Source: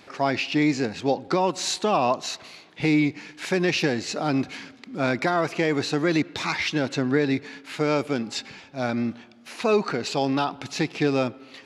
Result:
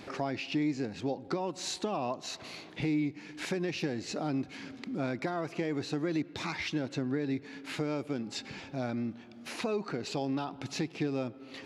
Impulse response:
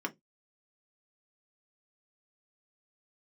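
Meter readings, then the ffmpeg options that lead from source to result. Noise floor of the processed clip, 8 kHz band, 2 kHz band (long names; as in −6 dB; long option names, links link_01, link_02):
−51 dBFS, −9.5 dB, −12.0 dB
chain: -filter_complex "[0:a]lowshelf=frequency=490:gain=7,acompressor=threshold=-38dB:ratio=2.5,asplit=2[link_01][link_02];[1:a]atrim=start_sample=2205,lowpass=frequency=1200:width=0.5412,lowpass=frequency=1200:width=1.3066[link_03];[link_02][link_03]afir=irnorm=-1:irlink=0,volume=-22dB[link_04];[link_01][link_04]amix=inputs=2:normalize=0"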